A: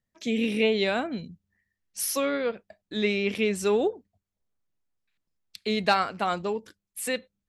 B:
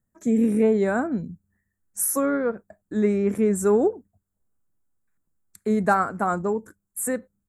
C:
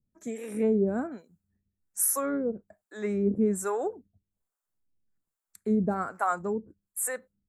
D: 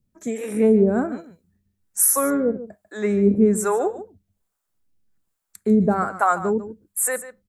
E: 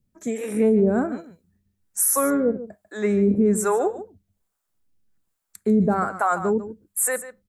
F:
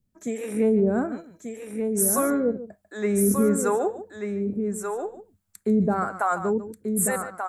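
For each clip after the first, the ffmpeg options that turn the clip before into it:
-af "firequalizer=gain_entry='entry(270,0);entry(540,-5);entry(1500,-3);entry(2800,-30);entry(4900,-24);entry(7200,-1)':delay=0.05:min_phase=1,volume=7dB"
-filter_complex "[0:a]acrossover=split=530[a][b];[a]aeval=exprs='val(0)*(1-1/2+1/2*cos(2*PI*1.2*n/s))':c=same[c];[b]aeval=exprs='val(0)*(1-1/2-1/2*cos(2*PI*1.2*n/s))':c=same[d];[c][d]amix=inputs=2:normalize=0,volume=-1dB"
-af "aecho=1:1:145:0.2,volume=8.5dB"
-af "alimiter=limit=-11dB:level=0:latency=1:release=14"
-af "aecho=1:1:1186:0.501,volume=-2.5dB"

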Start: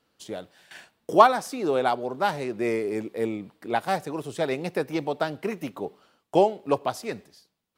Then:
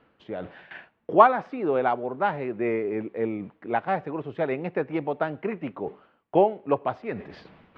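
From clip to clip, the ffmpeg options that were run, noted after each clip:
-af "lowpass=f=2.5k:w=0.5412,lowpass=f=2.5k:w=1.3066,areverse,acompressor=mode=upward:threshold=-29dB:ratio=2.5,areverse"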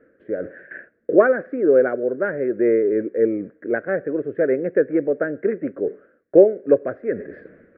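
-af "firequalizer=gain_entry='entry(160,0);entry(280,9);entry(540,13);entry(860,-20);entry(1600,11);entry(2900,-20);entry(4400,-25)':delay=0.05:min_phase=1,volume=-1.5dB"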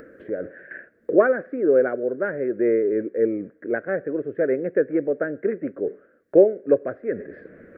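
-af "acompressor=mode=upward:threshold=-31dB:ratio=2.5,volume=-2.5dB"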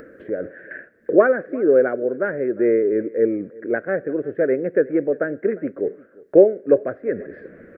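-af "aecho=1:1:352:0.075,volume=2.5dB"

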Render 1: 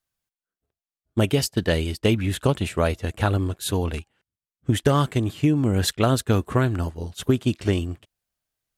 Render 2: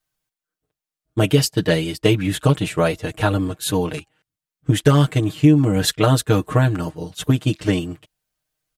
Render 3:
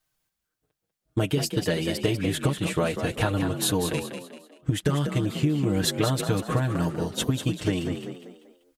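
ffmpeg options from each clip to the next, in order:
-af "aecho=1:1:6.5:0.96,volume=1.5dB"
-filter_complex "[0:a]acompressor=threshold=-24dB:ratio=6,asplit=2[a][b];[b]asplit=4[c][d][e][f];[c]adelay=194,afreqshift=45,volume=-8dB[g];[d]adelay=388,afreqshift=90,volume=-16.4dB[h];[e]adelay=582,afreqshift=135,volume=-24.8dB[i];[f]adelay=776,afreqshift=180,volume=-33.2dB[j];[g][h][i][j]amix=inputs=4:normalize=0[k];[a][k]amix=inputs=2:normalize=0,volume=2dB"

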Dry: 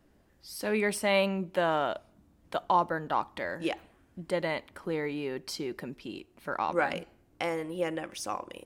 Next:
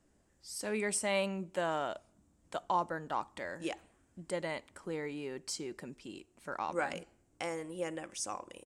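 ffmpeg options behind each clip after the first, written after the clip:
-af "firequalizer=gain_entry='entry(4100,0);entry(7700,14);entry(13000,-7)':delay=0.05:min_phase=1,volume=-6.5dB"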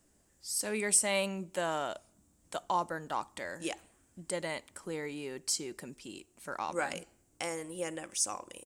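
-af "crystalizer=i=2:c=0"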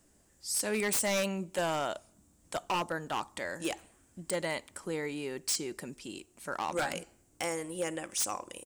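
-af "aeval=exprs='0.0447*(abs(mod(val(0)/0.0447+3,4)-2)-1)':c=same,volume=3dB"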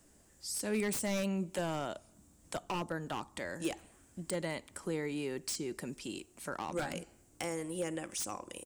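-filter_complex "[0:a]acrossover=split=360[a][b];[b]acompressor=threshold=-45dB:ratio=2[c];[a][c]amix=inputs=2:normalize=0,volume=2dB"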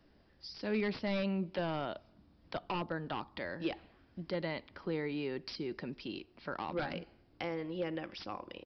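-af "aresample=11025,aresample=44100"

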